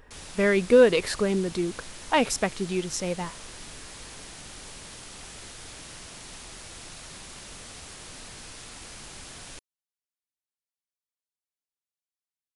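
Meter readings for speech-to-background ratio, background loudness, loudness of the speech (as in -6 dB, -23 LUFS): 17.5 dB, -41.5 LUFS, -24.0 LUFS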